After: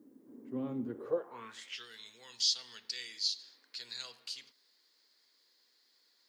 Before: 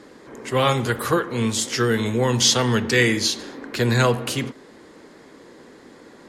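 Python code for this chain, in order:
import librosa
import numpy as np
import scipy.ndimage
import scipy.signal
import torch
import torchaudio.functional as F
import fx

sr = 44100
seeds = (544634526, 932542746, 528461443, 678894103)

y = fx.filter_sweep_bandpass(x, sr, from_hz=260.0, to_hz=4600.0, start_s=0.88, end_s=1.91, q=4.8)
y = fx.dynamic_eq(y, sr, hz=1600.0, q=0.85, threshold_db=-40.0, ratio=4.0, max_db=-4)
y = fx.dmg_noise_colour(y, sr, seeds[0], colour='blue', level_db=-77.0)
y = F.gain(torch.from_numpy(y), -6.0).numpy()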